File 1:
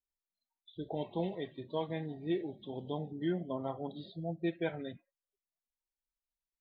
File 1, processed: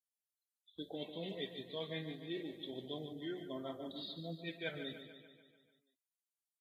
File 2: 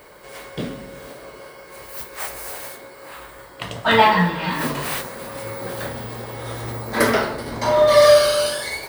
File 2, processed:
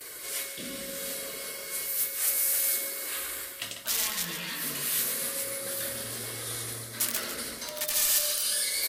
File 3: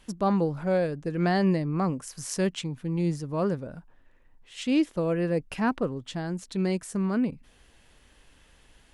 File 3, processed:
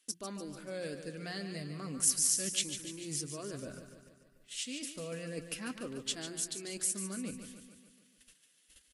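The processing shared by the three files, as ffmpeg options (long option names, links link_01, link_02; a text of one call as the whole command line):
ffmpeg -i in.wav -af "equalizer=frequency=870:width=2.7:gain=-12,agate=range=-17dB:threshold=-53dB:ratio=16:detection=peak,lowshelf=frequency=85:gain=-8,aeval=exprs='(mod(3.76*val(0)+1,2)-1)/3.76':channel_layout=same,areverse,acompressor=threshold=-35dB:ratio=16,areverse,flanger=delay=2.5:depth=2.3:regen=-51:speed=0.31:shape=triangular,bandreject=frequency=60:width_type=h:width=6,bandreject=frequency=120:width_type=h:width=6,bandreject=frequency=180:width_type=h:width=6,crystalizer=i=6.5:c=0,aecho=1:1:146|292|438|584|730|876|1022:0.335|0.194|0.113|0.0654|0.0379|0.022|0.0128" -ar 44100 -c:a libvorbis -b:a 48k out.ogg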